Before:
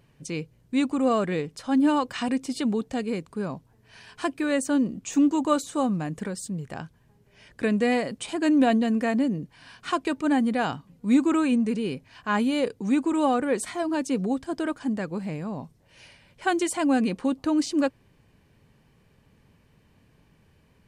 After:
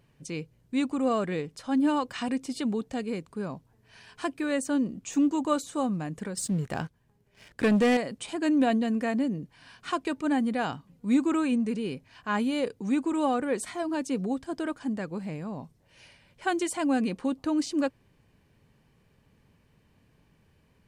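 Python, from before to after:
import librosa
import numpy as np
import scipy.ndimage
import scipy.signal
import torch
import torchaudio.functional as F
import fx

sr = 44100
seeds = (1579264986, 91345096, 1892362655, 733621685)

y = fx.leveller(x, sr, passes=2, at=(6.37, 7.97))
y = y * librosa.db_to_amplitude(-3.5)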